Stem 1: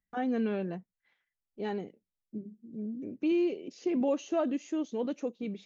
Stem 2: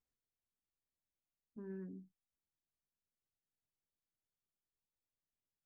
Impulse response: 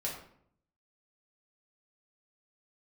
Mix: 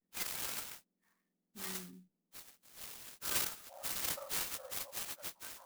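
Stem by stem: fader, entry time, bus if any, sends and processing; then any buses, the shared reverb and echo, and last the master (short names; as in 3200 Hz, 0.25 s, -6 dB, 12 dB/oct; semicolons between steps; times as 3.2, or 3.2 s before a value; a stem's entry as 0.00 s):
-1.5 dB, 0.00 s, no send, spectrum mirrored in octaves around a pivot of 1900 Hz
-10.5 dB, 0.00 s, no send, low shelf 500 Hz +7 dB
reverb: off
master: vibrato 0.37 Hz 48 cents; clock jitter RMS 0.068 ms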